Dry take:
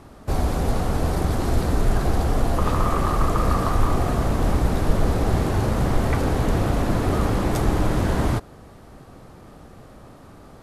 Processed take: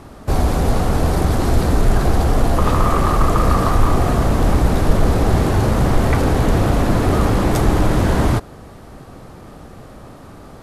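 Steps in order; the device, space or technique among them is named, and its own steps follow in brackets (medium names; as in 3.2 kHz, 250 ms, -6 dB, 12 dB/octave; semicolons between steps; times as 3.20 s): parallel distortion (in parallel at -12 dB: hard clipper -22 dBFS, distortion -7 dB); on the sum: trim +4.5 dB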